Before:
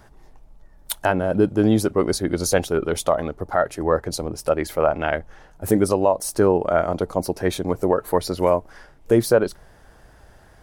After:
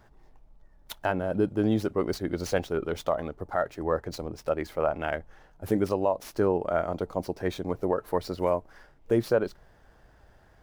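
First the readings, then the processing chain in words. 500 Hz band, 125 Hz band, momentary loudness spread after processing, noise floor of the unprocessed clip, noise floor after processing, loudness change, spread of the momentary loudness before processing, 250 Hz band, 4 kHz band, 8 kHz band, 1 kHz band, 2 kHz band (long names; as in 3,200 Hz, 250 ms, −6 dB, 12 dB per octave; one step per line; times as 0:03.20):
−7.5 dB, −7.5 dB, 7 LU, −50 dBFS, −58 dBFS, −7.5 dB, 7 LU, −7.5 dB, −10.0 dB, −16.5 dB, −7.5 dB, −7.5 dB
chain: running median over 5 samples
level −7.5 dB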